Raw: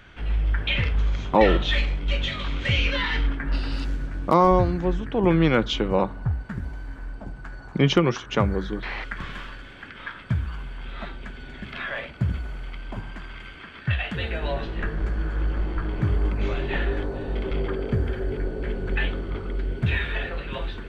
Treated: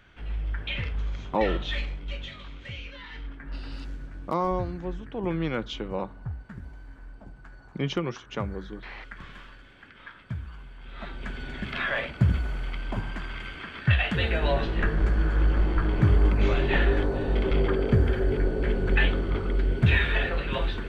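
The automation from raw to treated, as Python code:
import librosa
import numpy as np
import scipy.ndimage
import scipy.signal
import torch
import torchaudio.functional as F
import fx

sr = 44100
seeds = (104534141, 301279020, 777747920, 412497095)

y = fx.gain(x, sr, db=fx.line((1.84, -7.5), (2.96, -18.5), (3.67, -9.5), (10.8, -9.5), (11.31, 3.0)))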